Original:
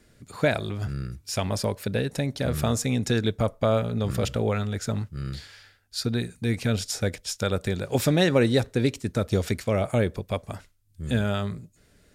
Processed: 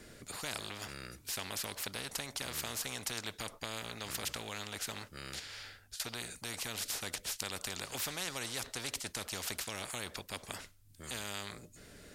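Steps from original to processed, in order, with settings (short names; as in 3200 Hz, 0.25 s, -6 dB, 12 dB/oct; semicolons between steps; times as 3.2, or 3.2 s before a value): dynamic EQ 3800 Hz, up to +6 dB, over -46 dBFS, Q 0.93; 5.39–6 compressor 10:1, threshold -46 dBFS, peak gain reduction 23.5 dB; spectral compressor 4:1; gain -6 dB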